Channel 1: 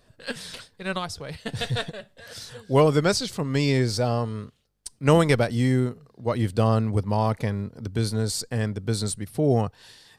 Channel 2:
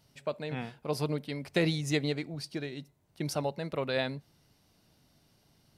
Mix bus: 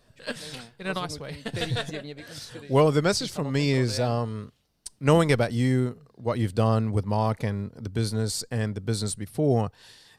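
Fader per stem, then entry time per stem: -1.5, -8.0 dB; 0.00, 0.00 s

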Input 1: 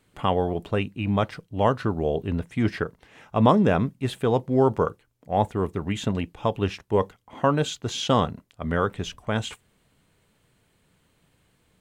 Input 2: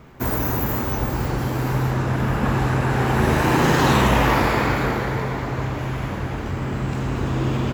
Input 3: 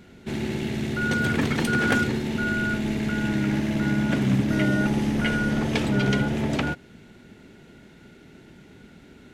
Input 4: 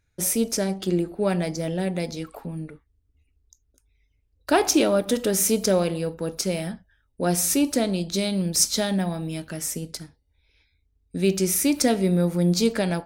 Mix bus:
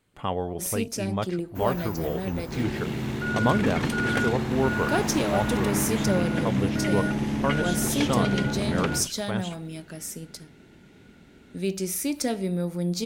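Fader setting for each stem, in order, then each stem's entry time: -5.5, -15.5, -3.5, -6.5 dB; 0.00, 1.35, 2.25, 0.40 s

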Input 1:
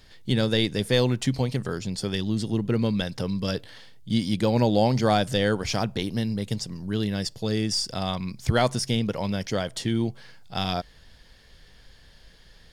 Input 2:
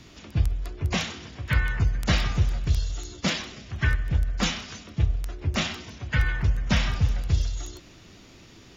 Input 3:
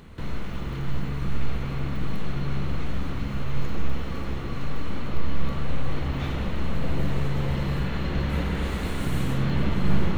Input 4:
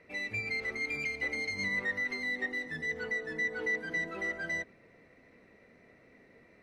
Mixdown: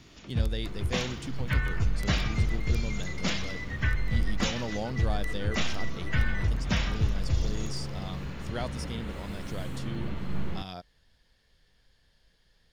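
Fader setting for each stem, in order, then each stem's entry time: -13.5, -4.5, -10.5, -8.5 dB; 0.00, 0.00, 0.45, 1.85 s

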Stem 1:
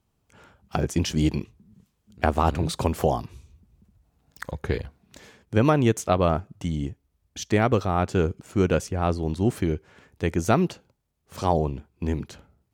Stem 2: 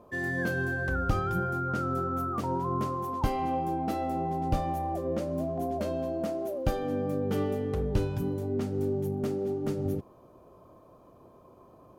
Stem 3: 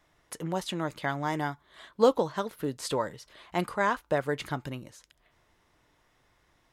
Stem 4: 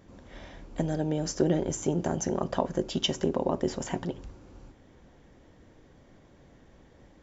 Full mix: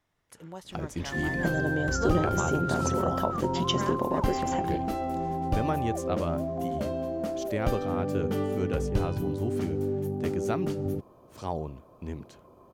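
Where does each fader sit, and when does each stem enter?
-10.5, 0.0, -11.0, -1.0 dB; 0.00, 1.00, 0.00, 0.65 s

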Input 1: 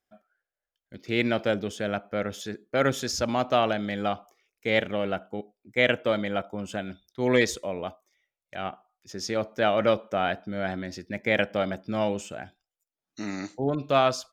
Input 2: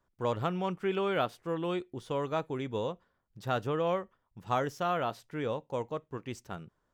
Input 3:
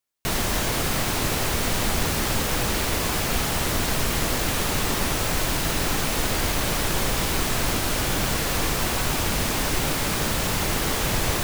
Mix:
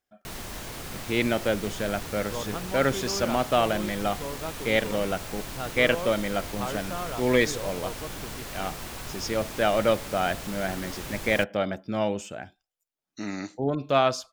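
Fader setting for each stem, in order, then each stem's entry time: 0.0, -4.0, -13.5 dB; 0.00, 2.10, 0.00 s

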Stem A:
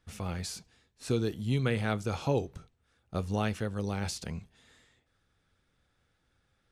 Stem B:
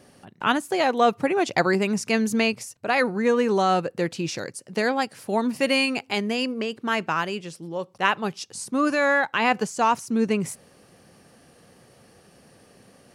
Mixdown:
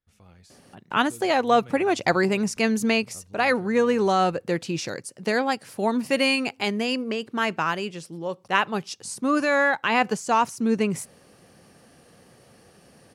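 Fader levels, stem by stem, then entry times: -17.0, 0.0 dB; 0.00, 0.50 s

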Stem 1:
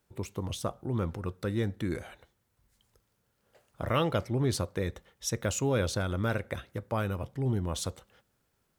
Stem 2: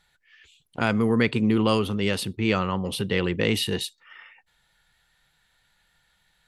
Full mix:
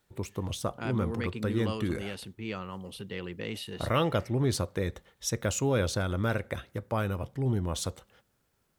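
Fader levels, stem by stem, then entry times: +1.0, -13.5 dB; 0.00, 0.00 s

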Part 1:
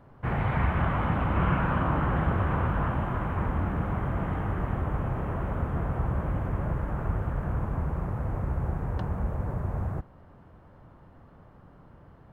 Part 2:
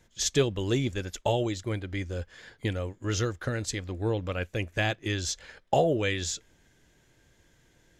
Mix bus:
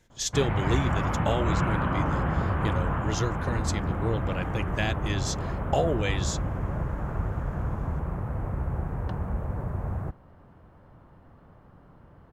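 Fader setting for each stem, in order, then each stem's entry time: -0.5, -1.5 dB; 0.10, 0.00 s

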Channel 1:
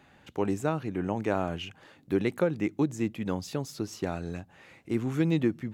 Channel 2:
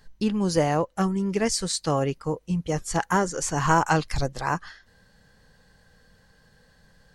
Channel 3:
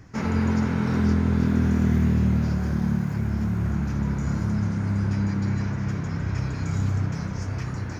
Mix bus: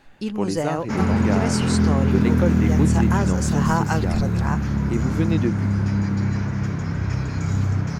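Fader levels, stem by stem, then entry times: +2.5, -3.0, +3.0 dB; 0.00, 0.00, 0.75 s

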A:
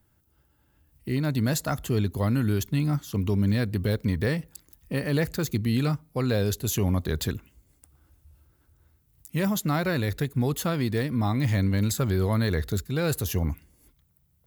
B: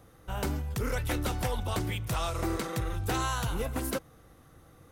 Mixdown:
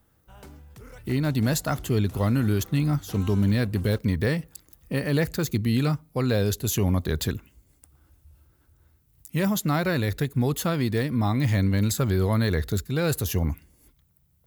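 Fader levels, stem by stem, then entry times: +1.5, -14.5 dB; 0.00, 0.00 s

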